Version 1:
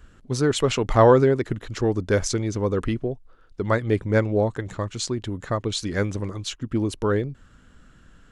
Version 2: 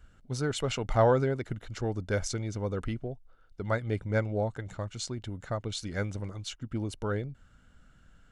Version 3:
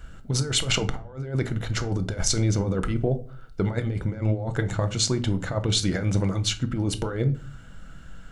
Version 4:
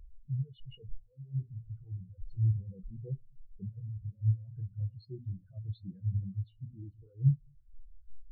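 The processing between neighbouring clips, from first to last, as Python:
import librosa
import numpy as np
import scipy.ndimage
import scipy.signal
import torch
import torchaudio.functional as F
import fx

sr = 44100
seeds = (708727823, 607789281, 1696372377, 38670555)

y1 = x + 0.36 * np.pad(x, (int(1.4 * sr / 1000.0), 0))[:len(x)]
y1 = y1 * librosa.db_to_amplitude(-8.5)
y2 = fx.over_compress(y1, sr, threshold_db=-34.0, ratio=-0.5)
y2 = fx.room_shoebox(y2, sr, seeds[0], volume_m3=330.0, walls='furnished', distance_m=0.69)
y2 = y2 * librosa.db_to_amplitude(9.0)
y3 = y2 + 0.5 * 10.0 ** (-19.5 / 20.0) * np.sign(y2)
y3 = fx.high_shelf_res(y3, sr, hz=5500.0, db=-8.5, q=1.5)
y3 = fx.spectral_expand(y3, sr, expansion=4.0)
y3 = y3 * librosa.db_to_amplitude(-7.5)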